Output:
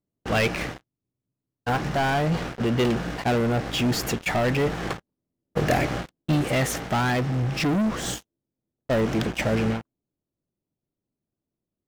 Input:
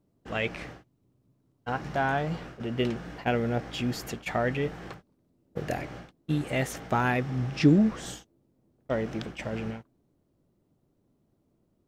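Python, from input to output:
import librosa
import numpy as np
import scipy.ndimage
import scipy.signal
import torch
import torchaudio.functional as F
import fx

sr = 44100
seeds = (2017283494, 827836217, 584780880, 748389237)

y = fx.leveller(x, sr, passes=5)
y = fx.rider(y, sr, range_db=5, speed_s=0.5)
y = F.gain(torch.from_numpy(y), -7.5).numpy()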